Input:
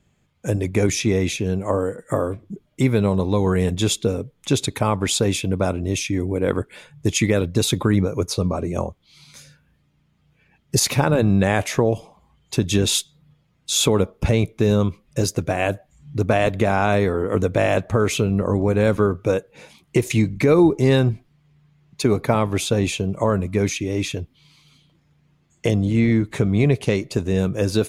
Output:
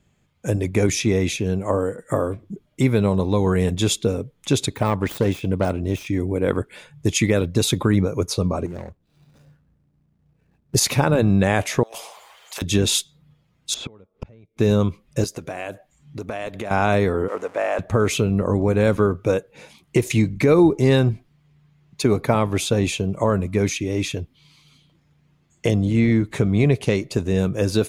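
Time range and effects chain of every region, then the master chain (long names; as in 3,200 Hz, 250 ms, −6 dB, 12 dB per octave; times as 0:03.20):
0:04.74–0:06.07: phase distortion by the signal itself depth 0.14 ms + de-essing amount 80%
0:08.66–0:10.75: running median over 41 samples + downward compressor 2.5 to 1, threshold −31 dBFS
0:11.83–0:12.62: inverse Chebyshev high-pass filter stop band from 290 Hz + compressor whose output falls as the input rises −35 dBFS, ratio −0.5 + every bin compressed towards the loudest bin 2 to 1
0:13.74–0:14.57: de-essing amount 95% + low-pass filter 4,300 Hz + gate with flip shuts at −17 dBFS, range −30 dB
0:15.24–0:16.71: parametric band 70 Hz −10.5 dB 2.7 octaves + downward compressor 3 to 1, threshold −28 dBFS
0:17.28–0:17.79: converter with a step at zero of −29.5 dBFS + band-pass filter 630–6,400 Hz + parametric band 4,000 Hz −13 dB 1.5 octaves
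whole clip: no processing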